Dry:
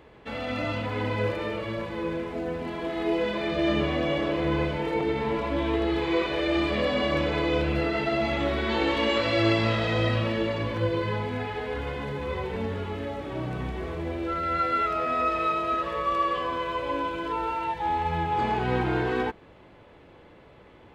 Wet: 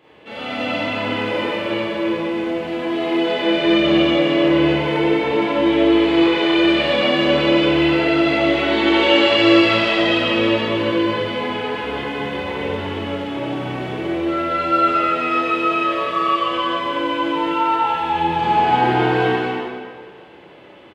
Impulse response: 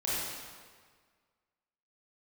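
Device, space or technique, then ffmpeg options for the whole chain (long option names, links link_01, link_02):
stadium PA: -filter_complex "[0:a]highpass=160,equalizer=frequency=2900:width_type=o:width=0.61:gain=7,aecho=1:1:148.7|239.1:0.282|0.562[link_01];[1:a]atrim=start_sample=2205[link_02];[link_01][link_02]afir=irnorm=-1:irlink=0,volume=-1dB"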